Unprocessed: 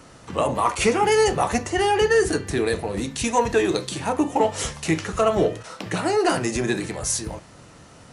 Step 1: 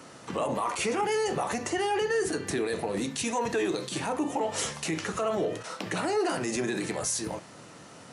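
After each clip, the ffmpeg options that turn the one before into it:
-af "alimiter=limit=-20dB:level=0:latency=1:release=88,highpass=160"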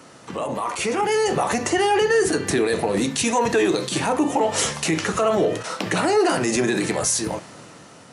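-af "dynaudnorm=f=410:g=5:m=7dB,volume=2dB"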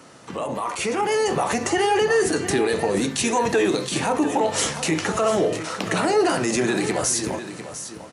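-af "aecho=1:1:699:0.266,volume=-1dB"

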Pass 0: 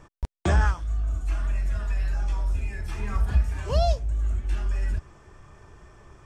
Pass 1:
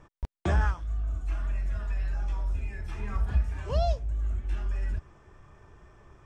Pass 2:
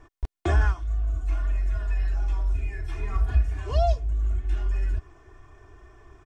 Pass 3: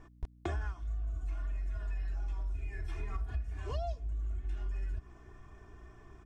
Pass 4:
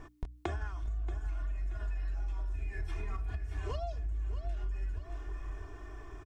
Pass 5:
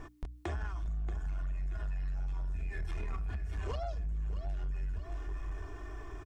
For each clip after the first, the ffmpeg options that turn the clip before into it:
-af "highshelf=f=6.7k:g=-11,bandreject=f=4.5k:w=26,volume=-4dB"
-af "aecho=1:1:2.8:0.87"
-af "acompressor=threshold=-29dB:ratio=5,aeval=exprs='val(0)+0.00224*(sin(2*PI*60*n/s)+sin(2*PI*2*60*n/s)/2+sin(2*PI*3*60*n/s)/3+sin(2*PI*4*60*n/s)/4+sin(2*PI*5*60*n/s)/5)':c=same,volume=-4.5dB"
-af "bandreject=f=60:t=h:w=6,bandreject=f=120:t=h:w=6,bandreject=f=180:t=h:w=6,bandreject=f=240:t=h:w=6,aecho=1:1:630|1260|1890:0.266|0.0851|0.0272,acompressor=threshold=-39dB:ratio=6,volume=6.5dB"
-af "asoftclip=type=tanh:threshold=-33.5dB,volume=3dB"

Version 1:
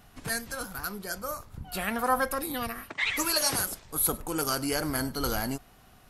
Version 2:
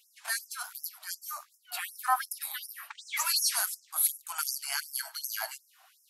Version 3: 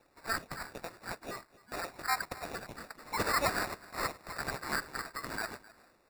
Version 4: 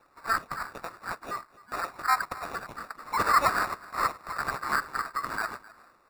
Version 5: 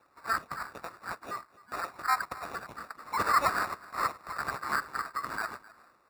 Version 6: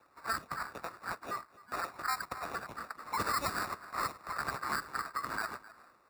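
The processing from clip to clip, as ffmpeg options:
-af "afftfilt=real='re*gte(b*sr/1024,590*pow(5200/590,0.5+0.5*sin(2*PI*2.7*pts/sr)))':imag='im*gte(b*sr/1024,590*pow(5200/590,0.5+0.5*sin(2*PI*2.7*pts/sr)))':win_size=1024:overlap=0.75"
-af "superequalizer=9b=0.501:10b=0.562:13b=0.316:16b=0.355,aecho=1:1:260:0.0944,acrusher=samples=14:mix=1:aa=0.000001"
-af "equalizer=f=1.2k:t=o:w=0.75:g=12.5"
-af "highpass=46,volume=-3dB"
-filter_complex "[0:a]acrossover=split=360|3000[a][b][c];[b]acompressor=threshold=-32dB:ratio=6[d];[a][d][c]amix=inputs=3:normalize=0"

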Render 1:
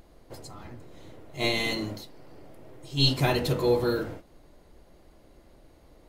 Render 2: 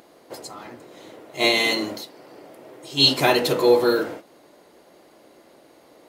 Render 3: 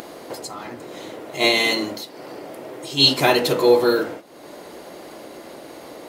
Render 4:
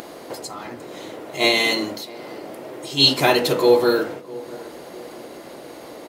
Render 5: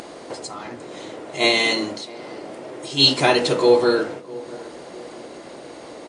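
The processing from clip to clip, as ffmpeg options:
-af "highpass=300,volume=8.5dB"
-af "acompressor=mode=upward:threshold=-28dB:ratio=2.5,volume=1.5dB"
-filter_complex "[0:a]asplit=2[a][b];[b]adelay=655,lowpass=f=880:p=1,volume=-18dB,asplit=2[c][d];[d]adelay=655,lowpass=f=880:p=1,volume=0.5,asplit=2[e][f];[f]adelay=655,lowpass=f=880:p=1,volume=0.5,asplit=2[g][h];[h]adelay=655,lowpass=f=880:p=1,volume=0.5[i];[a][c][e][g][i]amix=inputs=5:normalize=0"
-ar 22050 -c:a wmav2 -b:a 64k

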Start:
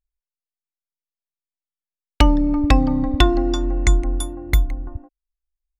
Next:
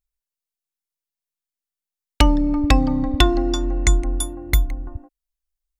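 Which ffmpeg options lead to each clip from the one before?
-af "highshelf=f=4.2k:g=7,volume=-1dB"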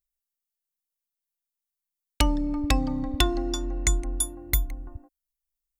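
-af "crystalizer=i=1.5:c=0,volume=-8dB"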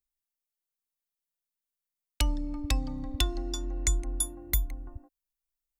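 -filter_complex "[0:a]acrossover=split=120|3000[a][b][c];[b]acompressor=threshold=-38dB:ratio=2[d];[a][d][c]amix=inputs=3:normalize=0,volume=-3dB"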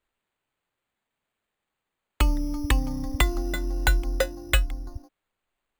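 -af "acrusher=samples=8:mix=1:aa=0.000001,volume=5.5dB"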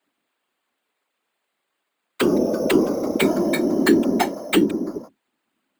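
-af "aeval=exprs='0.501*sin(PI/2*2.82*val(0)/0.501)':c=same,afreqshift=260,afftfilt=real='hypot(re,im)*cos(2*PI*random(0))':imag='hypot(re,im)*sin(2*PI*random(1))':win_size=512:overlap=0.75"

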